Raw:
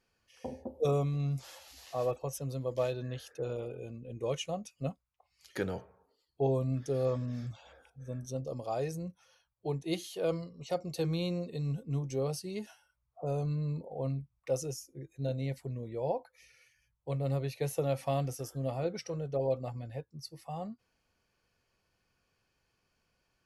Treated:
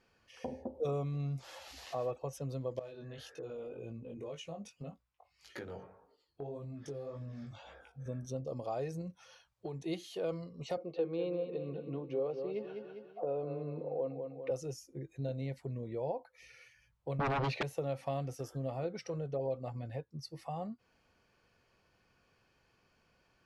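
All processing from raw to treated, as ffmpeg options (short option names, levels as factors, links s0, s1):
-filter_complex "[0:a]asettb=1/sr,asplit=3[s0][s1][s2];[s0]atrim=end=2.794[s3];[s1]atrim=start=2.79:end=8.06,asetpts=PTS-STARTPTS,afade=t=in:d=0.004:c=qsin,afade=t=out:st=5.266:d=0.004:c=qsin,acompressor=threshold=0.00708:ratio=3:attack=3.2:release=140:knee=1:detection=peak,flanger=delay=17.5:depth=3.8:speed=1.8[s4];[s2]atrim=start=8.056[s5];[s3][s4]acrossfade=d=0.004:c1=hsin:c2=qsin[s6];[s6][s5]acrossfade=d=0.004:c1=qsin:c2=hsin,asettb=1/sr,asplit=3[s7][s8][s9];[s7]atrim=end=9.014[s10];[s8]atrim=start=9.01:end=9.85,asetpts=PTS-STARTPTS,afade=t=in:d=0.004:c=qsin,afade=t=out:st=0.836:d=0.004:c=qsin,equalizer=f=6000:w=0.51:g=4.5,acompressor=threshold=0.0112:ratio=6:attack=3.2:release=140:knee=1:detection=peak[s11];[s9]atrim=start=9.846[s12];[s10][s11]acrossfade=d=0.004:c1=hsin:c2=qsin[s13];[s13][s12]acrossfade=d=0.004:c1=qsin:c2=hsin,asettb=1/sr,asplit=3[s14][s15][s16];[s14]atrim=end=10.774[s17];[s15]atrim=start=10.77:end=14.51,asetpts=PTS-STARTPTS,afade=t=in:d=0.004:c=qsin,afade=t=out:st=3.736:d=0.004:c=qsin,highpass=260,equalizer=f=330:t=q:w=4:g=6,equalizer=f=500:t=q:w=4:g=9,equalizer=f=2000:t=q:w=4:g=-5,lowpass=f=3200:w=0.5412,lowpass=f=3200:w=1.3066,aecho=1:1:200|400|600|800:0.316|0.114|0.041|0.0148,atrim=end_sample=164934[s18];[s16]atrim=start=14.506[s19];[s17][s18]acrossfade=d=0.004:c1=hsin:c2=qsin[s20];[s20][s19]acrossfade=d=0.004:c1=qsin:c2=hsin,asettb=1/sr,asplit=3[s21][s22][s23];[s21]atrim=end=17.194[s24];[s22]atrim=start=17.19:end=17.63,asetpts=PTS-STARTPTS,afade=t=in:d=0.004:c=qsin,afade=t=out:st=0.436:d=0.004:c=qsin,highpass=140,lowpass=4200,aeval=exprs='0.075*sin(PI/2*5.01*val(0)/0.075)':c=same[s25];[s23]atrim=start=17.626[s26];[s24][s25]acrossfade=d=0.004:c1=hsin:c2=qsin[s27];[s27][s26]acrossfade=d=0.004:c1=qsin:c2=hsin,lowshelf=f=86:g=-6,acompressor=threshold=0.00316:ratio=2,aemphasis=mode=reproduction:type=50kf,volume=2.37"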